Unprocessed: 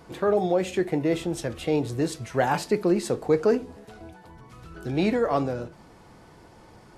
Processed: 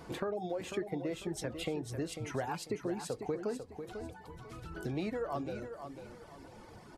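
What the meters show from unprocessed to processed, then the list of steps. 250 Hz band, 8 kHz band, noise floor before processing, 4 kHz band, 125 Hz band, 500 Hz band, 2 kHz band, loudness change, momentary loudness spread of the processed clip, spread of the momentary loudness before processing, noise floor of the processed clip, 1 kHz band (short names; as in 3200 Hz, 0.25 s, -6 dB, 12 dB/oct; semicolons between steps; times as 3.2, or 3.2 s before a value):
-12.5 dB, -7.5 dB, -52 dBFS, -8.0 dB, -10.5 dB, -13.0 dB, -11.0 dB, -13.5 dB, 13 LU, 9 LU, -53 dBFS, -12.5 dB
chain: reverb removal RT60 1.3 s; compressor 5:1, threshold -35 dBFS, peak gain reduction 17 dB; feedback echo 0.496 s, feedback 32%, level -8.5 dB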